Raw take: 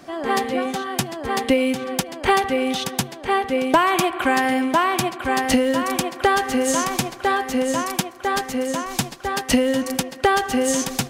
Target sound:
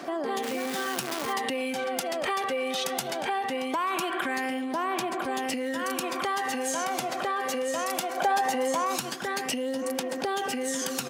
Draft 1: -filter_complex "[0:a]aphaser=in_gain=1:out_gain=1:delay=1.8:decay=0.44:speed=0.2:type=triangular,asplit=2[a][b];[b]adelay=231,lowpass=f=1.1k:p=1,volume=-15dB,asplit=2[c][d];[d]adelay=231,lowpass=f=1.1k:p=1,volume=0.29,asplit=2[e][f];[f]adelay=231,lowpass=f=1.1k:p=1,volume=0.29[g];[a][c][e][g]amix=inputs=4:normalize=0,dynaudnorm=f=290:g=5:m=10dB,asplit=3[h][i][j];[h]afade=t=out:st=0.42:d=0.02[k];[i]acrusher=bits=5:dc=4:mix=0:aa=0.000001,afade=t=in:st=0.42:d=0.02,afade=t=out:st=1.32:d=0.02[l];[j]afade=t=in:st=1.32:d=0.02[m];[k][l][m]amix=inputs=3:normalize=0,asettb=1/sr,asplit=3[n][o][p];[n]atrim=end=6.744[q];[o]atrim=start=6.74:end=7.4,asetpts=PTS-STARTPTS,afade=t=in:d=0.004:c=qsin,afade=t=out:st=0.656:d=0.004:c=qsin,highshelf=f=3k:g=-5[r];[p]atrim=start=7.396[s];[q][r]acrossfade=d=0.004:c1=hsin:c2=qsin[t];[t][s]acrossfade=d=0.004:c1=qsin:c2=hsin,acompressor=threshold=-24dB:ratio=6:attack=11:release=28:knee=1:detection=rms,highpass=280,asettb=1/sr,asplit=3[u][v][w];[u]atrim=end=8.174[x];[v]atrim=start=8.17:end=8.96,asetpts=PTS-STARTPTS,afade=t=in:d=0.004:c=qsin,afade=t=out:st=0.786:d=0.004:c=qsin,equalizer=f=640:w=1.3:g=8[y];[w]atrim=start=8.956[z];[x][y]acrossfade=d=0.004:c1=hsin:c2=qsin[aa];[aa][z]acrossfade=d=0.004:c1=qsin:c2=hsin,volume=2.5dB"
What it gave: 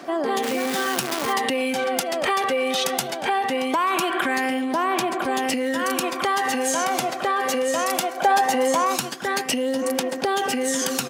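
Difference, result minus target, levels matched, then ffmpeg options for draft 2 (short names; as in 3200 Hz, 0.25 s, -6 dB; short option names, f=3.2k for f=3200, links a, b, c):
compressor: peak gain reduction -6.5 dB
-filter_complex "[0:a]aphaser=in_gain=1:out_gain=1:delay=1.8:decay=0.44:speed=0.2:type=triangular,asplit=2[a][b];[b]adelay=231,lowpass=f=1.1k:p=1,volume=-15dB,asplit=2[c][d];[d]adelay=231,lowpass=f=1.1k:p=1,volume=0.29,asplit=2[e][f];[f]adelay=231,lowpass=f=1.1k:p=1,volume=0.29[g];[a][c][e][g]amix=inputs=4:normalize=0,dynaudnorm=f=290:g=5:m=10dB,asplit=3[h][i][j];[h]afade=t=out:st=0.42:d=0.02[k];[i]acrusher=bits=5:dc=4:mix=0:aa=0.000001,afade=t=in:st=0.42:d=0.02,afade=t=out:st=1.32:d=0.02[l];[j]afade=t=in:st=1.32:d=0.02[m];[k][l][m]amix=inputs=3:normalize=0,asettb=1/sr,asplit=3[n][o][p];[n]atrim=end=6.744[q];[o]atrim=start=6.74:end=7.4,asetpts=PTS-STARTPTS,afade=t=in:d=0.004:c=qsin,afade=t=out:st=0.656:d=0.004:c=qsin,highshelf=f=3k:g=-5[r];[p]atrim=start=7.396[s];[q][r]acrossfade=d=0.004:c1=hsin:c2=qsin[t];[t][s]acrossfade=d=0.004:c1=qsin:c2=hsin,acompressor=threshold=-32dB:ratio=6:attack=11:release=28:knee=1:detection=rms,highpass=280,asettb=1/sr,asplit=3[u][v][w];[u]atrim=end=8.174[x];[v]atrim=start=8.17:end=8.96,asetpts=PTS-STARTPTS,afade=t=in:d=0.004:c=qsin,afade=t=out:st=0.786:d=0.004:c=qsin,equalizer=f=640:w=1.3:g=8[y];[w]atrim=start=8.956[z];[x][y]acrossfade=d=0.004:c1=hsin:c2=qsin[aa];[aa][z]acrossfade=d=0.004:c1=qsin:c2=hsin,volume=2.5dB"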